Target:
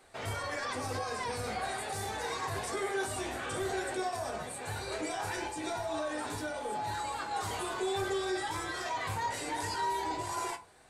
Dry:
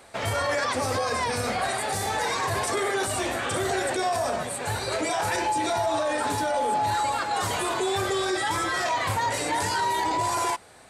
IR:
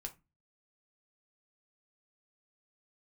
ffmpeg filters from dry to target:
-filter_complex "[1:a]atrim=start_sample=2205[a];[0:a][a]afir=irnorm=-1:irlink=0,volume=-6dB"

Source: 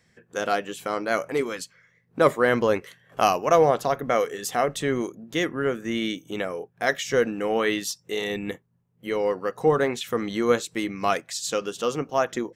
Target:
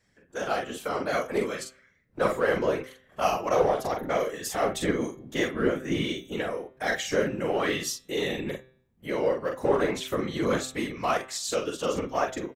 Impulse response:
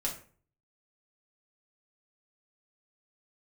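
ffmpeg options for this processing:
-filter_complex "[0:a]asplit=2[a][b];[b]asoftclip=type=hard:threshold=-20dB,volume=-6dB[c];[a][c]amix=inputs=2:normalize=0,asplit=2[d][e];[e]adelay=43,volume=-4.5dB[f];[d][f]amix=inputs=2:normalize=0,asplit=2[g][h];[1:a]atrim=start_sample=2205[i];[h][i]afir=irnorm=-1:irlink=0,volume=-21.5dB[j];[g][j]amix=inputs=2:normalize=0,dynaudnorm=f=150:g=7:m=4dB,afftfilt=real='hypot(re,im)*cos(2*PI*random(0))':imag='hypot(re,im)*sin(2*PI*random(1))':win_size=512:overlap=0.75,bandreject=f=129.6:t=h:w=4,bandreject=f=259.2:t=h:w=4,bandreject=f=388.8:t=h:w=4,bandreject=f=518.4:t=h:w=4,bandreject=f=648:t=h:w=4,bandreject=f=777.6:t=h:w=4,bandreject=f=907.2:t=h:w=4,bandreject=f=1.0368k:t=h:w=4,bandreject=f=1.1664k:t=h:w=4,bandreject=f=1.296k:t=h:w=4,bandreject=f=1.4256k:t=h:w=4,bandreject=f=1.5552k:t=h:w=4,bandreject=f=1.6848k:t=h:w=4,bandreject=f=1.8144k:t=h:w=4,bandreject=f=1.944k:t=h:w=4,bandreject=f=2.0736k:t=h:w=4,bandreject=f=2.2032k:t=h:w=4,bandreject=f=2.3328k:t=h:w=4,bandreject=f=2.4624k:t=h:w=4,bandreject=f=2.592k:t=h:w=4,bandreject=f=2.7216k:t=h:w=4,bandreject=f=2.8512k:t=h:w=4,bandreject=f=2.9808k:t=h:w=4,bandreject=f=3.1104k:t=h:w=4,bandreject=f=3.24k:t=h:w=4,bandreject=f=3.3696k:t=h:w=4,bandreject=f=3.4992k:t=h:w=4,bandreject=f=3.6288k:t=h:w=4,bandreject=f=3.7584k:t=h:w=4,bandreject=f=3.888k:t=h:w=4,bandreject=f=4.0176k:t=h:w=4,volume=-4dB"

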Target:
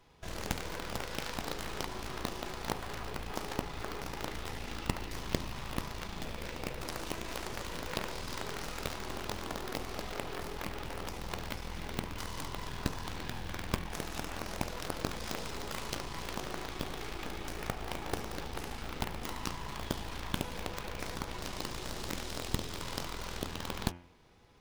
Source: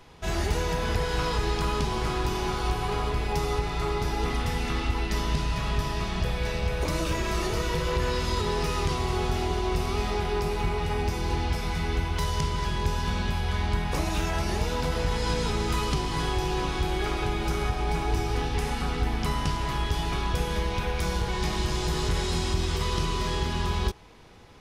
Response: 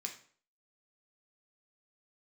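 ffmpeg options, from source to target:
-af "acrusher=bits=6:mode=log:mix=0:aa=0.000001,aeval=exprs='0.224*(cos(1*acos(clip(val(0)/0.224,-1,1)))-cos(1*PI/2))+0.0891*(cos(2*acos(clip(val(0)/0.224,-1,1)))-cos(2*PI/2))+0.1*(cos(3*acos(clip(val(0)/0.224,-1,1)))-cos(3*PI/2))+0.0224*(cos(4*acos(clip(val(0)/0.224,-1,1)))-cos(4*PI/2))+0.01*(cos(8*acos(clip(val(0)/0.224,-1,1)))-cos(8*PI/2))':c=same,bandreject=f=87.1:t=h:w=4,bandreject=f=174.2:t=h:w=4,bandreject=f=261.3:t=h:w=4,bandreject=f=348.4:t=h:w=4,bandreject=f=435.5:t=h:w=4,bandreject=f=522.6:t=h:w=4,bandreject=f=609.7:t=h:w=4,bandreject=f=696.8:t=h:w=4,bandreject=f=783.9:t=h:w=4,bandreject=f=871:t=h:w=4,bandreject=f=958.1:t=h:w=4,bandreject=f=1.0452k:t=h:w=4,bandreject=f=1.1323k:t=h:w=4,bandreject=f=1.2194k:t=h:w=4,bandreject=f=1.3065k:t=h:w=4,bandreject=f=1.3936k:t=h:w=4,bandreject=f=1.4807k:t=h:w=4,bandreject=f=1.5678k:t=h:w=4,bandreject=f=1.6549k:t=h:w=4,bandreject=f=1.742k:t=h:w=4,bandreject=f=1.8291k:t=h:w=4,bandreject=f=1.9162k:t=h:w=4,bandreject=f=2.0033k:t=h:w=4,bandreject=f=2.0904k:t=h:w=4,bandreject=f=2.1775k:t=h:w=4,bandreject=f=2.2646k:t=h:w=4,bandreject=f=2.3517k:t=h:w=4,bandreject=f=2.4388k:t=h:w=4,bandreject=f=2.5259k:t=h:w=4,bandreject=f=2.613k:t=h:w=4,bandreject=f=2.7001k:t=h:w=4,bandreject=f=2.7872k:t=h:w=4,bandreject=f=2.8743k:t=h:w=4,bandreject=f=2.9614k:t=h:w=4,bandreject=f=3.0485k:t=h:w=4,bandreject=f=3.1356k:t=h:w=4,volume=-1.5dB"

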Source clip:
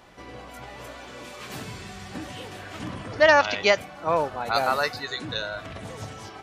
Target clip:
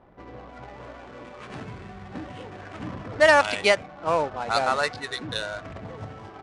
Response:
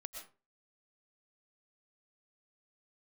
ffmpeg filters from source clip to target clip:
-af "adynamicsmooth=sensitivity=7.5:basefreq=760,aresample=22050,aresample=44100"

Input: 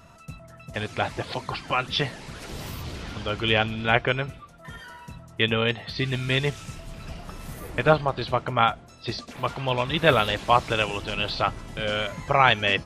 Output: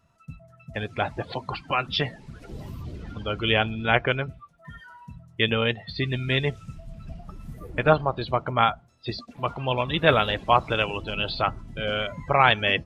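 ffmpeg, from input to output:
-af "afftdn=nr=16:nf=-34"

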